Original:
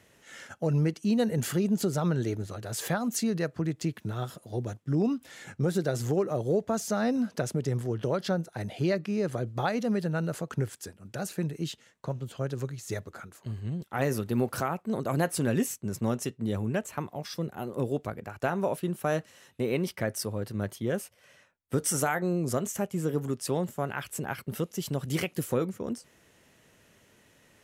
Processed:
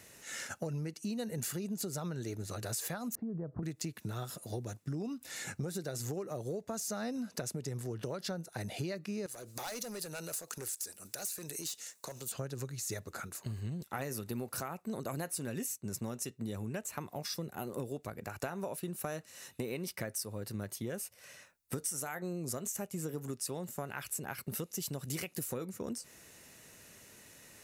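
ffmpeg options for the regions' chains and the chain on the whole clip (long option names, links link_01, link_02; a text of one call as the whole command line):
ffmpeg -i in.wav -filter_complex "[0:a]asettb=1/sr,asplit=3[link_01][link_02][link_03];[link_01]atrim=end=3.154[link_04];[link_02]atrim=start=3.15:end=3.63,asetpts=PTS-STARTPTS,afade=type=in:duration=0.004:curve=qsin,afade=type=out:start_time=0.476:duration=0.004:curve=qsin,lowpass=frequency=1100:width=0.5412,lowpass=frequency=1100:width=1.3066,lowshelf=frequency=320:gain=11,acompressor=threshold=-34dB:ratio=2.5:attack=3.2:release=140:knee=1:detection=peak[link_05];[link_03]atrim=start=3.626[link_06];[link_04][link_05]acrossfade=duration=0.004:curve1=hsin:curve2=qsin[link_07];[link_07][link_06]acrossfade=duration=0.004:curve1=qsin:curve2=hsin,asettb=1/sr,asplit=3[link_08][link_09][link_10];[link_08]atrim=end=9.264[link_11];[link_09]atrim=start=9.26:end=12.32,asetpts=PTS-STARTPTS,afade=type=in:duration=0.004:curve=qsin,afade=type=out:start_time=3.056:duration=0.004:curve=qsin,bass=frequency=250:gain=-14,treble=frequency=4000:gain=12,asoftclip=type=hard:threshold=-30.5dB,acompressor=threshold=-42dB:ratio=5:attack=3.2:release=140:knee=1:detection=peak[link_12];[link_10]atrim=start=12.316[link_13];[link_11][link_12]acrossfade=duration=0.004:curve1=hsin:curve2=qsin[link_14];[link_14][link_13]acrossfade=duration=0.004:curve1=qsin:curve2=hsin,highshelf=frequency=3800:gain=11.5,bandreject=frequency=3200:width=8.3,acompressor=threshold=-37dB:ratio=6,volume=1dB" out.wav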